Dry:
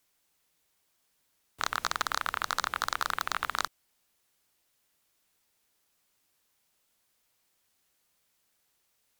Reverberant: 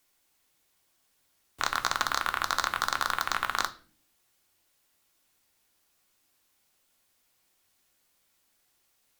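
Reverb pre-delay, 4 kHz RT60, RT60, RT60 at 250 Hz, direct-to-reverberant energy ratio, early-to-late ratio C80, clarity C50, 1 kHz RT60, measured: 3 ms, 0.35 s, 0.45 s, 0.80 s, 7.0 dB, 21.5 dB, 17.0 dB, 0.35 s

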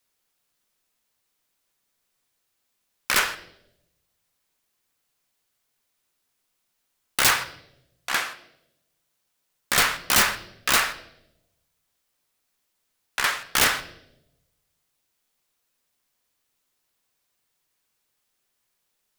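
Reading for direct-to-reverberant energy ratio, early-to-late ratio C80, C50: 8.5 dB, 17.0 dB, 14.5 dB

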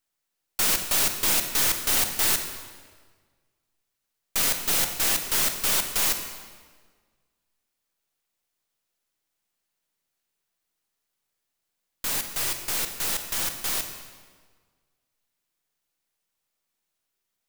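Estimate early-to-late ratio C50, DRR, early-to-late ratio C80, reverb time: 7.5 dB, 6.0 dB, 9.0 dB, 1.6 s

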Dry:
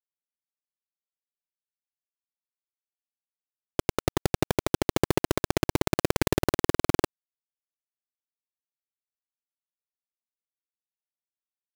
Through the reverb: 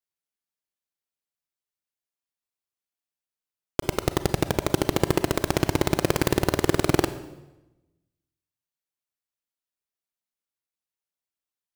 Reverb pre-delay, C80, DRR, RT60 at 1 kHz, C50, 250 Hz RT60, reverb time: 31 ms, 14.5 dB, 11.5 dB, 0.95 s, 13.0 dB, 1.2 s, 1.0 s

